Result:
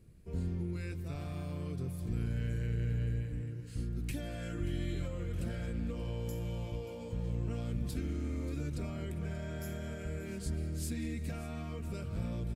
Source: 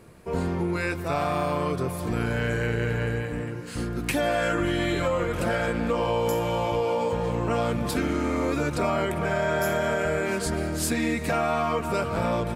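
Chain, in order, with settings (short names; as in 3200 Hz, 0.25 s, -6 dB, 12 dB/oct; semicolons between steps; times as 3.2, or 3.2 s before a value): passive tone stack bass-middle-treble 10-0-1; echo 0.582 s -16.5 dB; gain +6 dB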